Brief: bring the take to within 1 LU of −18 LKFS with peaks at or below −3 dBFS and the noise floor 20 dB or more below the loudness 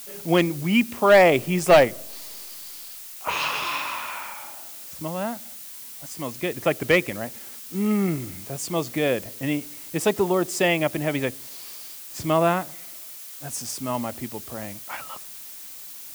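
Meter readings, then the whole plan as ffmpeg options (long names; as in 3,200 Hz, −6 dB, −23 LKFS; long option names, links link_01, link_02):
background noise floor −40 dBFS; target noise floor −44 dBFS; integrated loudness −23.5 LKFS; sample peak −7.5 dBFS; target loudness −18.0 LKFS
→ -af "afftdn=noise_reduction=6:noise_floor=-40"
-af "volume=5.5dB,alimiter=limit=-3dB:level=0:latency=1"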